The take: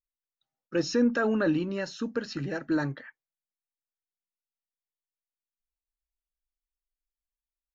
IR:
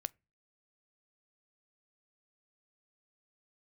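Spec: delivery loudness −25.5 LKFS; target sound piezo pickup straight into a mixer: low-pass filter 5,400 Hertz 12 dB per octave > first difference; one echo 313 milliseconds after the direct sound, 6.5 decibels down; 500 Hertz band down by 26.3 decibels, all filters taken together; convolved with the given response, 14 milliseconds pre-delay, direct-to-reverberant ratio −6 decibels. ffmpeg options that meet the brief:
-filter_complex "[0:a]equalizer=frequency=500:width_type=o:gain=-3.5,aecho=1:1:313:0.473,asplit=2[link_01][link_02];[1:a]atrim=start_sample=2205,adelay=14[link_03];[link_02][link_03]afir=irnorm=-1:irlink=0,volume=7.5dB[link_04];[link_01][link_04]amix=inputs=2:normalize=0,lowpass=5400,aderivative,volume=14.5dB"

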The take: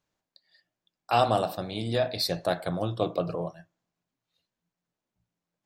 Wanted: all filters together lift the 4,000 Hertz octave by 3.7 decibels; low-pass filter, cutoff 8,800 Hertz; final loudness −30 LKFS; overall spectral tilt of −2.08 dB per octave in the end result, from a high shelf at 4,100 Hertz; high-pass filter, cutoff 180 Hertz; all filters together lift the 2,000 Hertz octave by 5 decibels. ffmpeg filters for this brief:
ffmpeg -i in.wav -af "highpass=180,lowpass=8800,equalizer=frequency=2000:width_type=o:gain=7,equalizer=frequency=4000:width_type=o:gain=7,highshelf=frequency=4100:gain=-8,volume=-2.5dB" out.wav

